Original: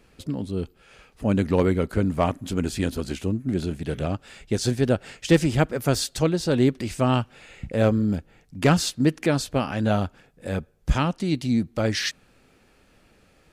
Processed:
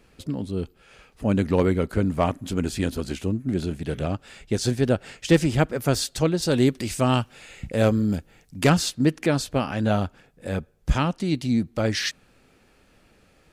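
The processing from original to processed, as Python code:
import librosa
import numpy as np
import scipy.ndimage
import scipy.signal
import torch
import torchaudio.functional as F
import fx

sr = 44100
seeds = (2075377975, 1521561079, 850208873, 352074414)

y = fx.high_shelf(x, sr, hz=4200.0, db=8.5, at=(6.42, 8.7))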